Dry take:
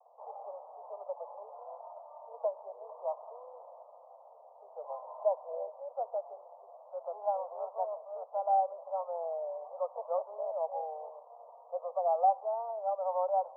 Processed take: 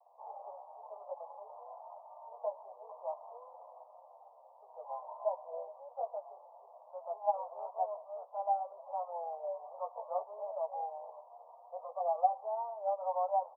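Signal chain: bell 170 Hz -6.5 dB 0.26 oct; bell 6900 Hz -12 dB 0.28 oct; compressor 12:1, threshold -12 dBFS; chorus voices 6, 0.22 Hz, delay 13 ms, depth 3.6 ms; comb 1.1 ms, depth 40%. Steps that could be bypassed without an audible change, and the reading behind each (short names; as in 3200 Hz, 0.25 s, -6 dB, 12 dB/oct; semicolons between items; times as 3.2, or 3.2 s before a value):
bell 170 Hz: input band starts at 400 Hz; bell 6900 Hz: input band ends at 1100 Hz; compressor, threshold -12 dBFS: input peak -16.5 dBFS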